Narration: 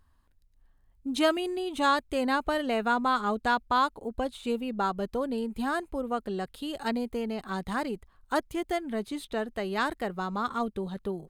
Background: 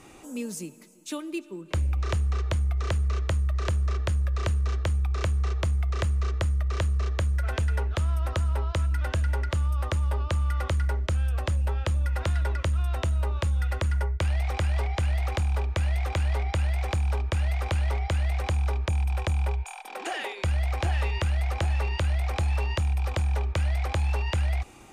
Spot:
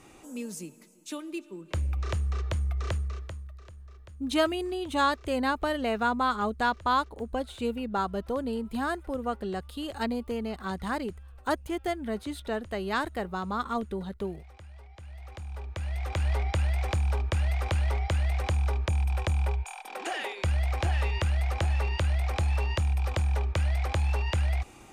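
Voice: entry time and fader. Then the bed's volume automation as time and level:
3.15 s, -0.5 dB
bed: 2.93 s -3.5 dB
3.68 s -22.5 dB
14.88 s -22.5 dB
16.29 s -1 dB

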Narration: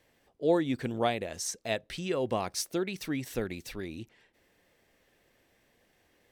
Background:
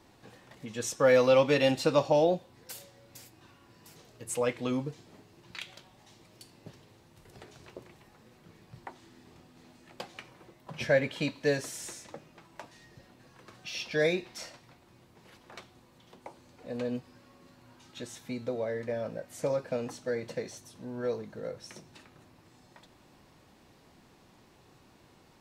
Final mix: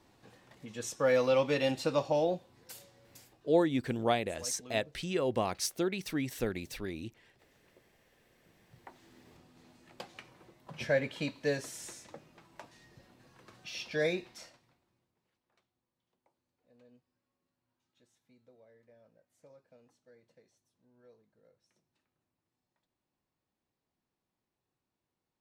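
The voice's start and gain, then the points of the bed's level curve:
3.05 s, -0.5 dB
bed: 3.15 s -5 dB
3.66 s -18.5 dB
8.09 s -18.5 dB
9.14 s -4 dB
14.23 s -4 dB
15.35 s -28.5 dB

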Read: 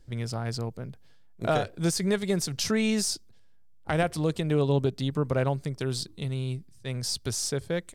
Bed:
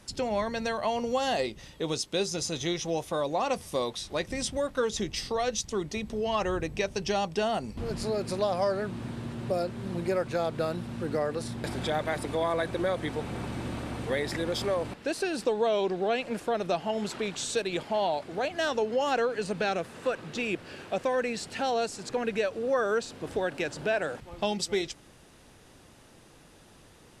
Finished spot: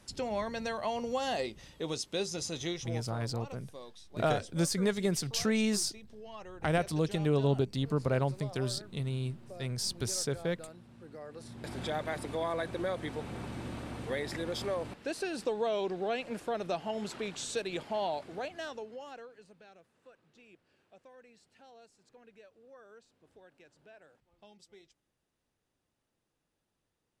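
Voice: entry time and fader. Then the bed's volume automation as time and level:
2.75 s, -3.5 dB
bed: 2.67 s -5 dB
3.28 s -18.5 dB
11.16 s -18.5 dB
11.79 s -5.5 dB
18.27 s -5.5 dB
19.62 s -28.5 dB

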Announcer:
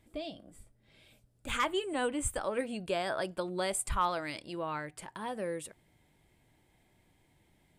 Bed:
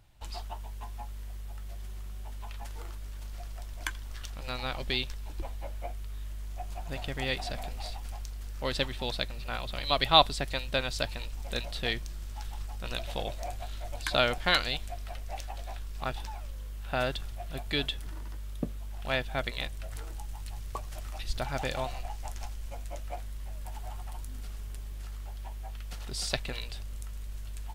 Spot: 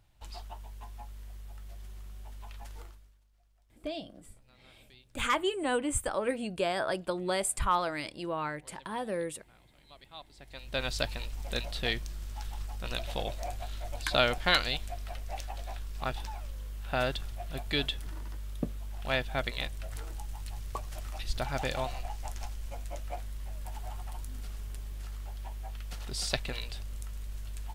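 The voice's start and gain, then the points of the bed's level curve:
3.70 s, +2.5 dB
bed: 2.81 s -4.5 dB
3.25 s -28 dB
10.23 s -28 dB
10.85 s 0 dB

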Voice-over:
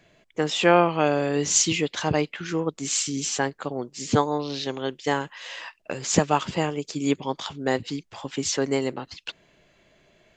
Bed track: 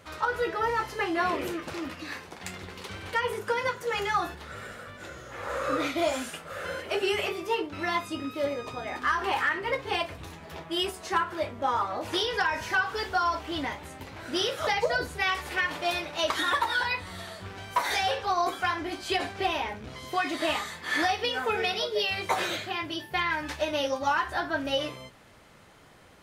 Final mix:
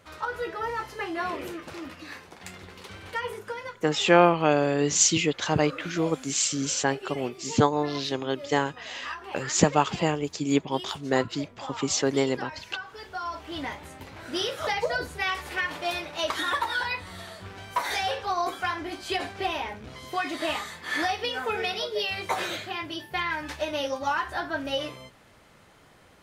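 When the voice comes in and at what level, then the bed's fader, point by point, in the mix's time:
3.45 s, 0.0 dB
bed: 3.29 s -3.5 dB
3.83 s -12 dB
12.92 s -12 dB
13.68 s -1 dB

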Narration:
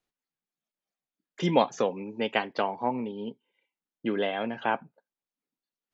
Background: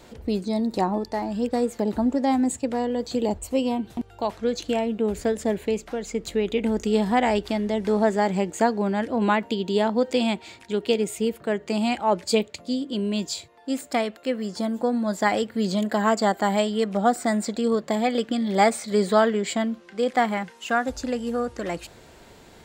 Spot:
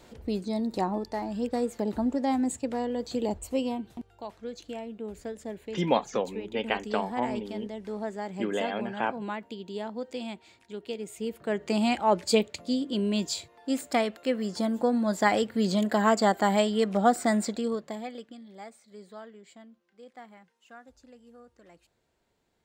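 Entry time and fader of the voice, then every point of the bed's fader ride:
4.35 s, -2.0 dB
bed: 3.61 s -5 dB
4.25 s -13.5 dB
10.98 s -13.5 dB
11.66 s -1.5 dB
17.42 s -1.5 dB
18.59 s -26 dB

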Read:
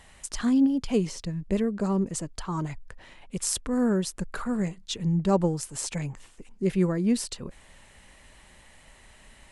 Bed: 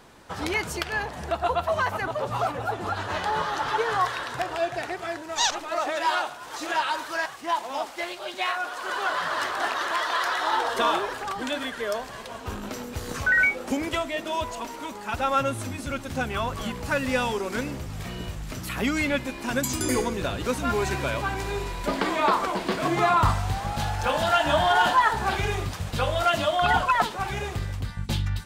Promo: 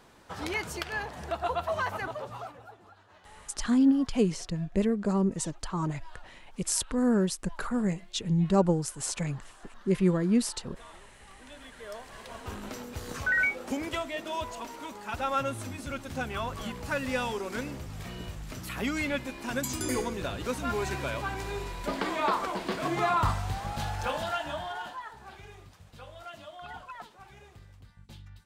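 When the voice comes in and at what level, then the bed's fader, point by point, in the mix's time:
3.25 s, -0.5 dB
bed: 2.05 s -5.5 dB
3 s -28.5 dB
11.09 s -28.5 dB
12.34 s -5.5 dB
24.03 s -5.5 dB
25.05 s -22 dB

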